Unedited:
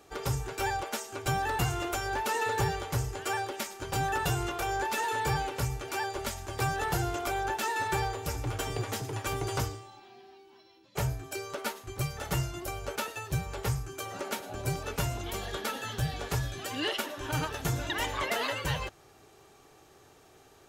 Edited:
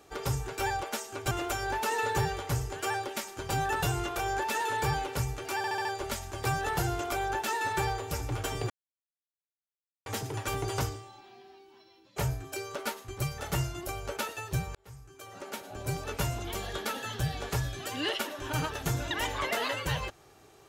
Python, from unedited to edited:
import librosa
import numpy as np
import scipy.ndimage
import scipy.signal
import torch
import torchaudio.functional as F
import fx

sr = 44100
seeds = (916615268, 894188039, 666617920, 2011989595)

y = fx.edit(x, sr, fx.cut(start_s=1.31, length_s=0.43),
    fx.stutter(start_s=6.0, slice_s=0.07, count=5),
    fx.insert_silence(at_s=8.85, length_s=1.36),
    fx.fade_in_span(start_s=13.54, length_s=1.37), tone=tone)